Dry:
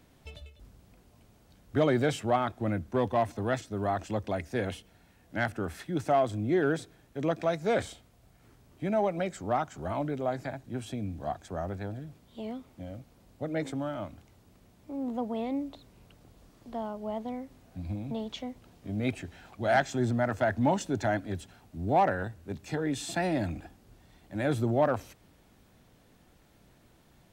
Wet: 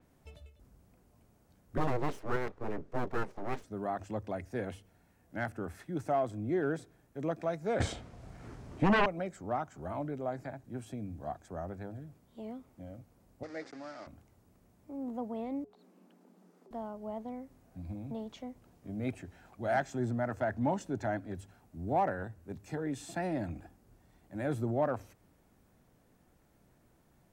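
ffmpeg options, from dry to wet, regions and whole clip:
ffmpeg -i in.wav -filter_complex "[0:a]asettb=1/sr,asplit=3[link_01][link_02][link_03];[link_01]atrim=end=1.774[link_04];[link_02]atrim=start=1.77:end=3.64,asetpts=PTS-STARTPTS,afade=type=in:duration=0.004:curve=qsin,afade=type=out:start_time=1.866:duration=0.004:curve=qsin,lowpass=5300,aeval=exprs='abs(val(0))':channel_layout=same,equalizer=frequency=430:width=2.1:gain=7[link_05];[link_03]atrim=start=3.636[link_06];[link_04][link_05]acrossfade=duration=0.004:curve1=hsin:curve2=qsin[link_07];[link_07][link_06]acrossfade=duration=0.004:curve1=qsin:curve2=hsin,asettb=1/sr,asplit=3[link_08][link_09][link_10];[link_08]atrim=end=7.804[link_11];[link_09]atrim=start=7.8:end=9.06,asetpts=PTS-STARTPTS,afade=type=in:duration=0.004:curve=qsin,afade=type=out:start_time=1.256:duration=0.004:curve=qsin,lowpass=6000,aeval=exprs='0.158*sin(PI/2*4.47*val(0)/0.158)':channel_layout=same[link_12];[link_10]atrim=start=9.056[link_13];[link_11][link_12]acrossfade=duration=0.004:curve1=hsin:curve2=qsin[link_14];[link_14][link_13]acrossfade=duration=0.004:curve1=qsin:curve2=hsin,asettb=1/sr,asplit=3[link_15][link_16][link_17];[link_15]atrim=end=13.434[link_18];[link_16]atrim=start=13.43:end=14.07,asetpts=PTS-STARTPTS,afade=type=in:duration=0.004:curve=qsin,afade=type=out:start_time=0.636:duration=0.004:curve=qsin,aeval=exprs='val(0)*gte(abs(val(0)),0.0112)':channel_layout=same,aeval=exprs='val(0)+0.00794*(sin(2*PI*60*n/s)+sin(2*PI*2*60*n/s)/2+sin(2*PI*3*60*n/s)/3+sin(2*PI*4*60*n/s)/4+sin(2*PI*5*60*n/s)/5)':channel_layout=same,highpass=420,equalizer=frequency=600:width_type=q:width=4:gain=-4,equalizer=frequency=960:width_type=q:width=4:gain=-7,equalizer=frequency=1900:width_type=q:width=4:gain=3,equalizer=frequency=3000:width_type=q:width=4:gain=-5,equalizer=frequency=4800:width_type=q:width=4:gain=8,lowpass=frequency=6200:width=0.5412,lowpass=frequency=6200:width=1.3066[link_19];[link_17]atrim=start=14.066[link_20];[link_18][link_19]acrossfade=duration=0.004:curve1=hsin:curve2=qsin[link_21];[link_21][link_20]acrossfade=duration=0.004:curve1=qsin:curve2=hsin,asettb=1/sr,asplit=3[link_22][link_23][link_24];[link_22]atrim=end=15.644[link_25];[link_23]atrim=start=15.64:end=16.71,asetpts=PTS-STARTPTS,afade=type=in:duration=0.004:curve=qsin,afade=type=out:start_time=1.066:duration=0.004:curve=qsin,highshelf=frequency=5800:gain=-5,acompressor=threshold=-50dB:ratio=12:attack=3.2:release=140:knee=1:detection=peak,afreqshift=140[link_26];[link_24]atrim=start=16.706[link_27];[link_25][link_26]acrossfade=duration=0.004:curve1=hsin:curve2=qsin[link_28];[link_28][link_27]acrossfade=duration=0.004:curve1=qsin:curve2=hsin,equalizer=frequency=3500:width_type=o:width=1.3:gain=-8,bandreject=frequency=50:width_type=h:width=6,bandreject=frequency=100:width_type=h:width=6,adynamicequalizer=threshold=0.002:dfrequency=5900:dqfactor=0.7:tfrequency=5900:tqfactor=0.7:attack=5:release=100:ratio=0.375:range=2.5:mode=cutabove:tftype=highshelf,volume=-5dB" out.wav

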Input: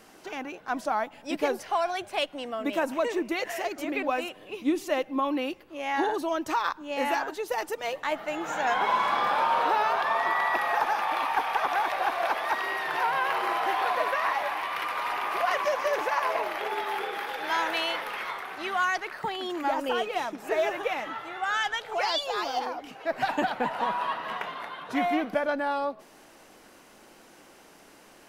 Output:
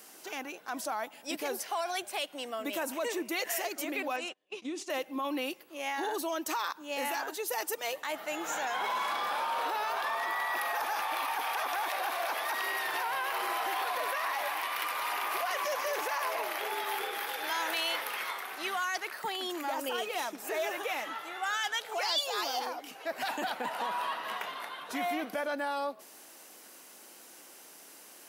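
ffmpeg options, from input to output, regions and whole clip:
ffmpeg -i in.wav -filter_complex "[0:a]asettb=1/sr,asplit=3[link_01][link_02][link_03];[link_01]atrim=end=4.164[link_04];[link_02]atrim=start=4.16:end=4.9,asetpts=PTS-STARTPTS,afade=type=in:duration=0.004:curve=qsin,afade=type=out:start_time=0.736:duration=0.004:curve=qsin,lowpass=frequency=7600:width=0.5412,lowpass=frequency=7600:width=1.3066,agate=range=-29dB:threshold=-42dB:ratio=16:release=100:detection=peak,acompressor=threshold=-30dB:ratio=3:attack=3.2:release=140:knee=1:detection=peak[link_05];[link_03]atrim=start=4.896[link_06];[link_04][link_05]acrossfade=duration=0.004:curve1=hsin:curve2=qsin[link_07];[link_07][link_06]acrossfade=duration=0.004:curve1=qsin:curve2=hsin,alimiter=limit=-21.5dB:level=0:latency=1:release=17,highpass=230,aemphasis=mode=production:type=75kf,volume=-4.5dB" out.wav

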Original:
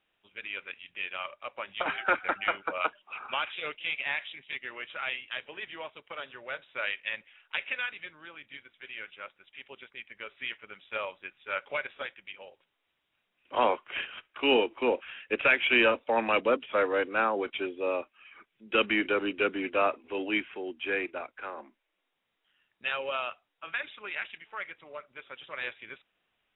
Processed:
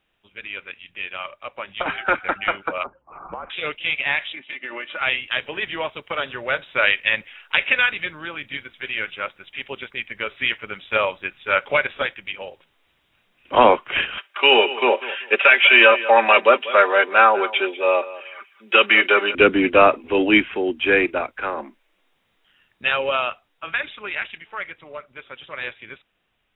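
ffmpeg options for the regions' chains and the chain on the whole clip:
ffmpeg -i in.wav -filter_complex "[0:a]asettb=1/sr,asplit=3[link_01][link_02][link_03];[link_01]atrim=end=2.834[link_04];[link_02]atrim=start=2.83:end=3.5,asetpts=PTS-STARTPTS,afade=type=in:duration=0.004:curve=qsin,afade=type=out:start_time=0.666:duration=0.004:curve=qsin,lowpass=frequency=1200:width=0.5412,lowpass=frequency=1200:width=1.3066,acompressor=threshold=-35dB:ratio=10:attack=3.2:release=140:knee=1:detection=peak,afreqshift=-62[link_05];[link_03]atrim=start=3.496[link_06];[link_04][link_05]acrossfade=duration=0.004:curve1=hsin:curve2=qsin[link_07];[link_07][link_06]acrossfade=duration=0.004:curve1=qsin:curve2=hsin,asettb=1/sr,asplit=3[link_08][link_09][link_10];[link_08]atrim=end=4.334[link_11];[link_09]atrim=start=4.33:end=5.01,asetpts=PTS-STARTPTS,afade=type=in:duration=0.004:curve=qsin,afade=type=out:start_time=0.676:duration=0.004:curve=qsin,aecho=1:1:3.4:0.58,atrim=end_sample=29988,acompressor=threshold=-37dB:ratio=10:attack=3.2:release=140:knee=1:detection=peak,highpass=190,lowpass=3100[link_12];[link_10]atrim=start=5.006[link_13];[link_11][link_12]acrossfade=duration=0.004:curve1=hsin:curve2=qsin[link_14];[link_14][link_13]acrossfade=duration=0.004:curve1=qsin:curve2=hsin,asettb=1/sr,asplit=3[link_15][link_16][link_17];[link_15]atrim=end=14.184[link_18];[link_16]atrim=start=14.18:end=19.35,asetpts=PTS-STARTPTS,afade=type=in:duration=0.004:curve=qsin,afade=type=out:start_time=5.166:duration=0.004:curve=qsin,highpass=610,aecho=1:1:5.1:0.62,atrim=end_sample=227997,aecho=1:1:193|386:0.141|0.0339,atrim=end_sample=227997[link_19];[link_17]atrim=start=19.346[link_20];[link_18][link_19]acrossfade=duration=0.004:curve1=hsin:curve2=qsin[link_21];[link_21][link_20]acrossfade=duration=0.004:curve1=qsin:curve2=hsin,dynaudnorm=framelen=730:gausssize=13:maxgain=11.5dB,lowshelf=frequency=160:gain=9.5,alimiter=level_in=6dB:limit=-1dB:release=50:level=0:latency=1,volume=-1dB" out.wav

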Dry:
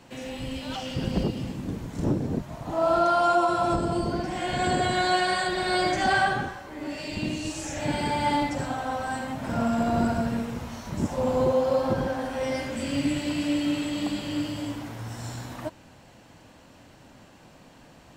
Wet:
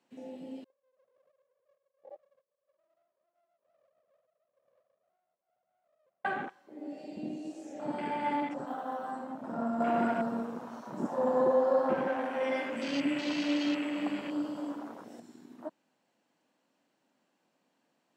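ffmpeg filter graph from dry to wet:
ffmpeg -i in.wav -filter_complex "[0:a]asettb=1/sr,asplit=3[link_01][link_02][link_03];[link_01]atrim=end=0.644[link_04];[link_02]atrim=start=0.64:end=6.25,asetpts=PTS-STARTPTS,afade=type=in:duration=0.004:curve=qsin,afade=type=out:start_time=5.606:duration=0.004:curve=qsin,flanger=delay=5:depth=4.1:regen=-58:speed=1.1:shape=triangular,asuperpass=centerf=280:order=4:qfactor=5.2,aeval=exprs='abs(val(0))':channel_layout=same[link_05];[link_03]atrim=start=6.246[link_06];[link_04][link_05]acrossfade=duration=0.004:curve1=hsin:curve2=qsin[link_07];[link_07][link_06]acrossfade=duration=0.004:curve1=qsin:curve2=hsin,asettb=1/sr,asplit=3[link_08][link_09][link_10];[link_08]atrim=end=8.674[link_11];[link_09]atrim=start=8.67:end=9.11,asetpts=PTS-STARTPTS,afade=type=in:duration=0.004:curve=qsin,afade=type=out:start_time=0.436:duration=0.004:curve=qsin,equalizer=frequency=3200:width_type=o:width=0.47:gain=8.5,acrusher=bits=5:mode=log:mix=0:aa=0.000001[link_12];[link_10]atrim=start=9.106[link_13];[link_11][link_12]acrossfade=duration=0.004:curve1=hsin:curve2=qsin[link_14];[link_14][link_13]acrossfade=duration=0.004:curve1=qsin:curve2=hsin,asettb=1/sr,asplit=3[link_15][link_16][link_17];[link_15]atrim=end=9.804[link_18];[link_16]atrim=start=9.8:end=15.2,asetpts=PTS-STARTPTS,afade=type=in:duration=0.004:curve=qsin,afade=type=out:start_time=5.396:duration=0.004:curve=qsin,acontrast=69,lowshelf=frequency=450:gain=-6[link_19];[link_17]atrim=start=15.196[link_20];[link_18][link_19]acrossfade=duration=0.004:curve1=hsin:curve2=qsin[link_21];[link_21][link_20]acrossfade=duration=0.004:curve1=qsin:curve2=hsin,highpass=frequency=200:width=0.5412,highpass=frequency=200:width=1.3066,afwtdn=0.0251,volume=-6.5dB" out.wav

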